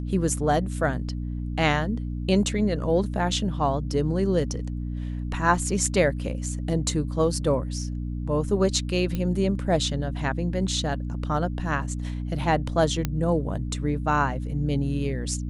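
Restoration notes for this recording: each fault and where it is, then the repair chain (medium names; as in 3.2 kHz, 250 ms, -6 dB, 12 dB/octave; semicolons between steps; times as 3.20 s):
hum 60 Hz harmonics 5 -30 dBFS
9.15 s: pop -16 dBFS
13.05 s: pop -11 dBFS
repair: de-click; de-hum 60 Hz, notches 5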